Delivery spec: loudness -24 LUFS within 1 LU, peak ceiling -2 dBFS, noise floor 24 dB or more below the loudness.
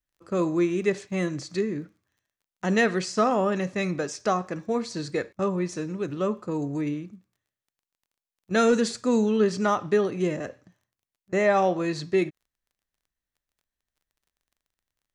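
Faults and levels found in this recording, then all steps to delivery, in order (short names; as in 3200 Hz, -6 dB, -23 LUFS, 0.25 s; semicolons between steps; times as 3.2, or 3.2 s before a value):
ticks 20/s; loudness -26.0 LUFS; peak -12.0 dBFS; loudness target -24.0 LUFS
-> de-click; gain +2 dB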